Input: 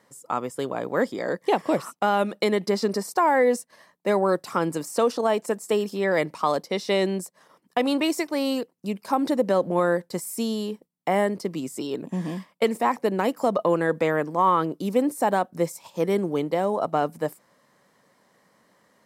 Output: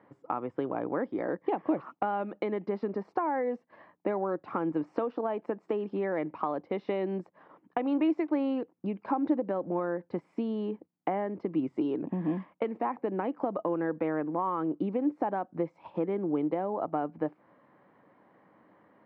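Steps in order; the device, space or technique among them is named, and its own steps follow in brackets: bass amplifier (compression 4:1, threshold -31 dBFS, peak gain reduction 13 dB; cabinet simulation 87–2300 Hz, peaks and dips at 97 Hz +8 dB, 310 Hz +9 dB, 800 Hz +4 dB, 1.9 kHz -4 dB)

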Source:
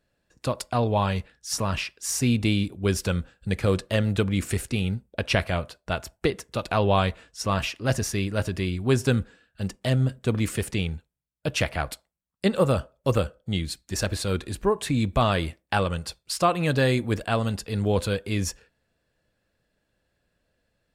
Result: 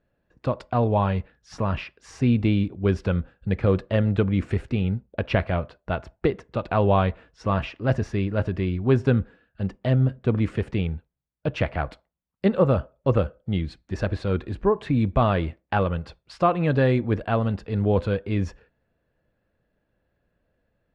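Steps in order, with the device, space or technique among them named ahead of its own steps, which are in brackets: phone in a pocket (low-pass 3.4 kHz 12 dB/octave; treble shelf 2.4 kHz -12 dB); trim +2.5 dB

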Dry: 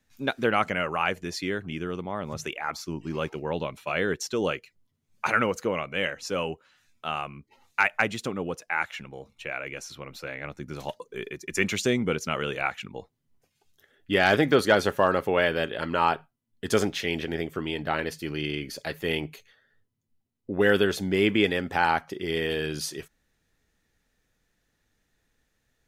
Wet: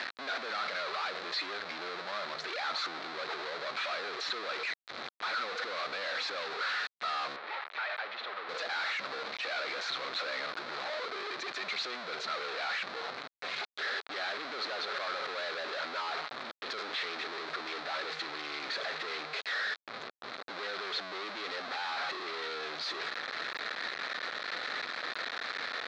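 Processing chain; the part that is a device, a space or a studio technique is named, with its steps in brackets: local Wiener filter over 9 samples; home computer beeper (one-bit comparator; cabinet simulation 730–4200 Hz, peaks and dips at 910 Hz -5 dB, 1.3 kHz +3 dB, 2.9 kHz -7 dB, 4.1 kHz +8 dB); 7.36–8.49 s: three-band isolator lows -15 dB, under 420 Hz, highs -22 dB, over 3.6 kHz; trim -3 dB

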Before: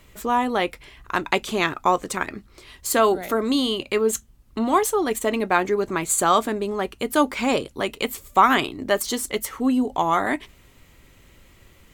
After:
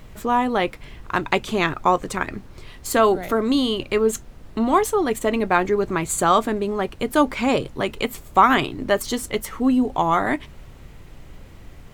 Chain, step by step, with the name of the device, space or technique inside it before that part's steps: car interior (peaking EQ 130 Hz +7.5 dB 0.69 oct; treble shelf 4.3 kHz -6 dB; brown noise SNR 18 dB); trim +1.5 dB

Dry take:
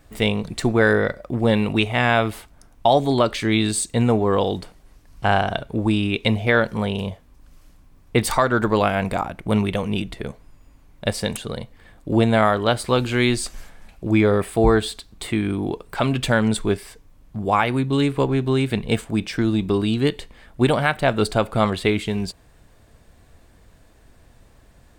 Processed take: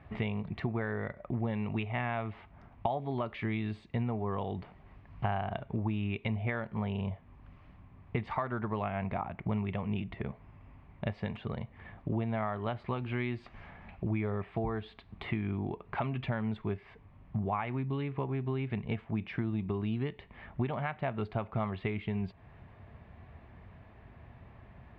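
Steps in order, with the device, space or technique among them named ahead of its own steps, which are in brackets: bass amplifier (compression 4:1, threshold -34 dBFS, peak gain reduction 19 dB; cabinet simulation 68–2400 Hz, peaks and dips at 100 Hz +3 dB, 300 Hz -8 dB, 500 Hz -9 dB, 1.5 kHz -7 dB); trim +3 dB

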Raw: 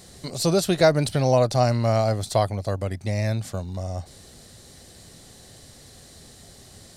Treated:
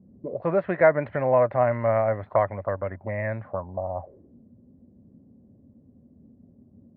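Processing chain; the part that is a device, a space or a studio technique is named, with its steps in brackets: envelope filter bass rig (touch-sensitive low-pass 200–1900 Hz up, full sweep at -22 dBFS; cabinet simulation 72–2300 Hz, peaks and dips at 140 Hz -4 dB, 570 Hz +9 dB, 1 kHz +8 dB); trim -6.5 dB

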